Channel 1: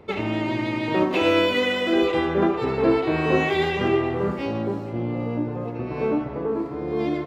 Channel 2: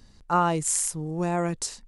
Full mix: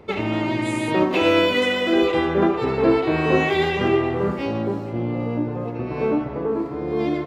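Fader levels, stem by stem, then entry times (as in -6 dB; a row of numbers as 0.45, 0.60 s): +2.0, -17.0 dB; 0.00, 0.00 s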